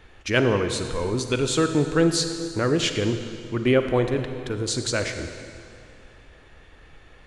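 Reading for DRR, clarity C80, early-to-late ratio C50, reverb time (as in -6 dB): 7.0 dB, 8.5 dB, 7.5 dB, 2.4 s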